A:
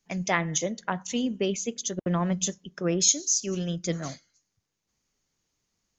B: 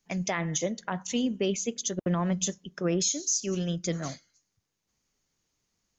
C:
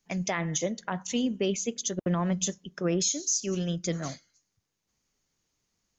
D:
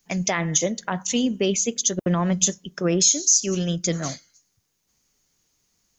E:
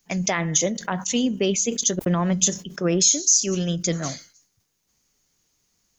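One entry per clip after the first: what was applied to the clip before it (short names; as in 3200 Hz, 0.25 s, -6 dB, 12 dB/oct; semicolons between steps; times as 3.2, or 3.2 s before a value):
limiter -17.5 dBFS, peak gain reduction 10.5 dB
nothing audible
high shelf 6600 Hz +10 dB; gain +5.5 dB
sustainer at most 150 dB/s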